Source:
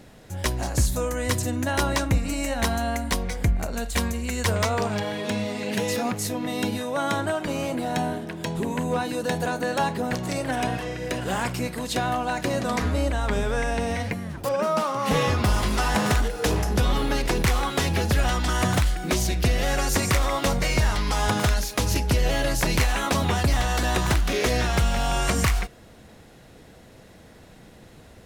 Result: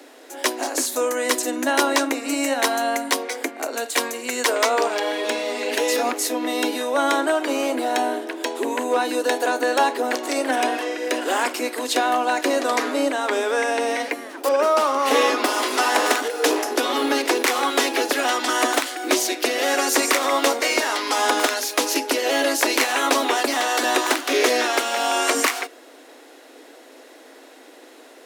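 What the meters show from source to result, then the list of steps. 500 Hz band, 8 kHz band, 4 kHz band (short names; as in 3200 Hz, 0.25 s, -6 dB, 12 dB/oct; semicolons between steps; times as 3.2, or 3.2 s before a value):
+6.0 dB, +6.0 dB, +6.0 dB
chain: steep high-pass 260 Hz 96 dB/oct; gain +6 dB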